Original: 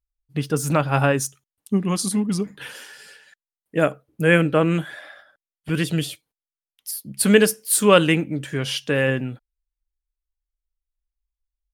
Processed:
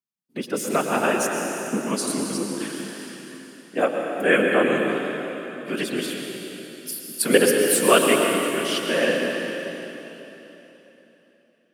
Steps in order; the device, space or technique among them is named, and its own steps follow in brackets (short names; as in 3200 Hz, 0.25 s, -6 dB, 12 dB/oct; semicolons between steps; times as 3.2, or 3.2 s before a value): whispering ghost (whisperiser; HPF 230 Hz 24 dB/oct; reverb RT60 3.5 s, pre-delay 0.105 s, DRR 1.5 dB); gain -2 dB